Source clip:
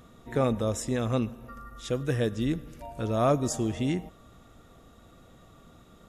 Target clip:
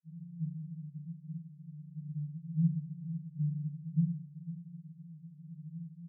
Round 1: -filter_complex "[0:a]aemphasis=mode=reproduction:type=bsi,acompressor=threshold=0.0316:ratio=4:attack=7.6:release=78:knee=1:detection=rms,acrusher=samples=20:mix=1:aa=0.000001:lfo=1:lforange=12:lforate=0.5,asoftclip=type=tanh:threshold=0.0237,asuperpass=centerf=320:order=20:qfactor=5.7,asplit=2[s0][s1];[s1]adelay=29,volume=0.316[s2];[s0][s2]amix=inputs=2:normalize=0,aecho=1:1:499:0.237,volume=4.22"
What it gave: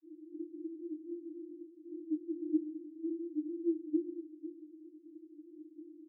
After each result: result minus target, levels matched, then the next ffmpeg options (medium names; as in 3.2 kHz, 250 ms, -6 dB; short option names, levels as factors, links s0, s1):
compression: peak gain reduction +13 dB; decimation with a swept rate: distortion +7 dB; 250 Hz band +3.5 dB
-filter_complex "[0:a]aemphasis=mode=reproduction:type=bsi,acrusher=samples=20:mix=1:aa=0.000001:lfo=1:lforange=12:lforate=0.5,asoftclip=type=tanh:threshold=0.0237,asuperpass=centerf=320:order=20:qfactor=5.7,asplit=2[s0][s1];[s1]adelay=29,volume=0.316[s2];[s0][s2]amix=inputs=2:normalize=0,aecho=1:1:499:0.237,volume=4.22"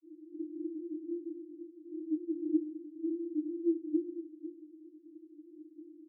decimation with a swept rate: distortion +8 dB; 250 Hz band +3.0 dB
-filter_complex "[0:a]aemphasis=mode=reproduction:type=bsi,acrusher=samples=8:mix=1:aa=0.000001:lfo=1:lforange=4.8:lforate=0.5,asoftclip=type=tanh:threshold=0.0237,asuperpass=centerf=320:order=20:qfactor=5.7,asplit=2[s0][s1];[s1]adelay=29,volume=0.316[s2];[s0][s2]amix=inputs=2:normalize=0,aecho=1:1:499:0.237,volume=4.22"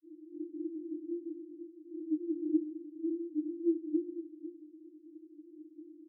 250 Hz band +3.0 dB
-filter_complex "[0:a]aemphasis=mode=reproduction:type=bsi,acrusher=samples=8:mix=1:aa=0.000001:lfo=1:lforange=4.8:lforate=0.5,asoftclip=type=tanh:threshold=0.0237,asuperpass=centerf=160:order=20:qfactor=5.7,asplit=2[s0][s1];[s1]adelay=29,volume=0.316[s2];[s0][s2]amix=inputs=2:normalize=0,aecho=1:1:499:0.237,volume=4.22"